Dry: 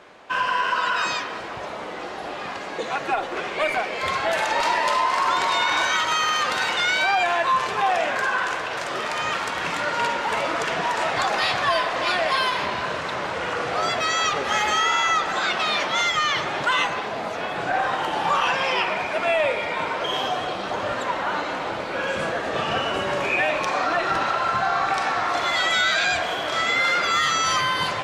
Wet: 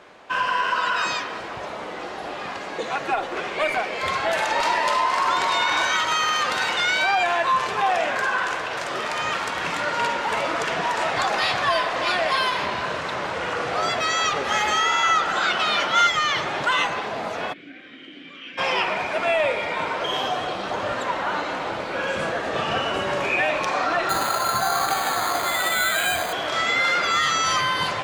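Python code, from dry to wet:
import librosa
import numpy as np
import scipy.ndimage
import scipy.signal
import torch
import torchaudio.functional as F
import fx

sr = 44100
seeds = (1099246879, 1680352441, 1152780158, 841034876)

y = fx.small_body(x, sr, hz=(1400.0, 3000.0), ring_ms=45, db=11, at=(15.03, 16.07))
y = fx.vowel_filter(y, sr, vowel='i', at=(17.52, 18.57), fade=0.02)
y = fx.resample_bad(y, sr, factor=8, down='filtered', up='hold', at=(24.09, 26.33))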